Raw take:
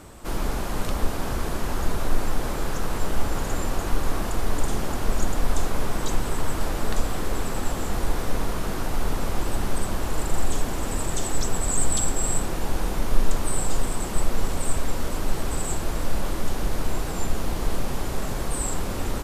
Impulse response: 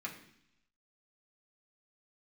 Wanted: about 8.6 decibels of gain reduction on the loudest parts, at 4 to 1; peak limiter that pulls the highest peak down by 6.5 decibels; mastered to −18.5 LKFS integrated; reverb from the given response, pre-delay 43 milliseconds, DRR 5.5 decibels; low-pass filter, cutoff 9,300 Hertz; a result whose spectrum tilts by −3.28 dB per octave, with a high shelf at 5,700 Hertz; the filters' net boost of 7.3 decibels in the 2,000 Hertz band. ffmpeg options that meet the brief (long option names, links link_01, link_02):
-filter_complex "[0:a]lowpass=9300,equalizer=frequency=2000:width_type=o:gain=8.5,highshelf=frequency=5700:gain=8,acompressor=threshold=-19dB:ratio=4,alimiter=limit=-17.5dB:level=0:latency=1,asplit=2[link_01][link_02];[1:a]atrim=start_sample=2205,adelay=43[link_03];[link_02][link_03]afir=irnorm=-1:irlink=0,volume=-6dB[link_04];[link_01][link_04]amix=inputs=2:normalize=0,volume=11.5dB"